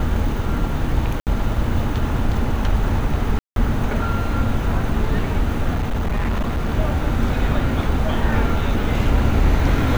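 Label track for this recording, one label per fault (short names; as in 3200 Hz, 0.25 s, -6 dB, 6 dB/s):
1.200000	1.270000	gap 68 ms
3.390000	3.560000	gap 0.172 s
5.740000	6.690000	clipped -17 dBFS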